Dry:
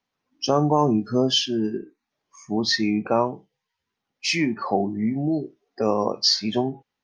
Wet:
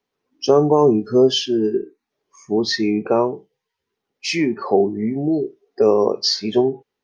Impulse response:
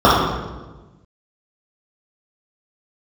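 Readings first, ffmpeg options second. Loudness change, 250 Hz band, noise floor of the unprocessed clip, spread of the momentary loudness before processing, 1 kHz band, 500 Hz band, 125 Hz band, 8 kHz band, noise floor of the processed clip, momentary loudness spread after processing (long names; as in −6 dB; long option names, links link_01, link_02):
+4.5 dB, +3.5 dB, −83 dBFS, 10 LU, +1.0 dB, +8.5 dB, +0.5 dB, 0.0 dB, −81 dBFS, 9 LU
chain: -af "equalizer=frequency=410:width_type=o:width=0.51:gain=13"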